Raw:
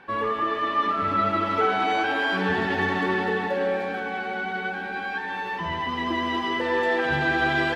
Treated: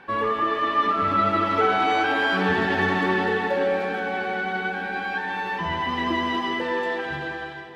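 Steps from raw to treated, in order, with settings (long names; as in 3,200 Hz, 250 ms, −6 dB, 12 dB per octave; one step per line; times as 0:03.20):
fade-out on the ending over 1.62 s
feedback delay with all-pass diffusion 543 ms, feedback 52%, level −15.5 dB
level +2 dB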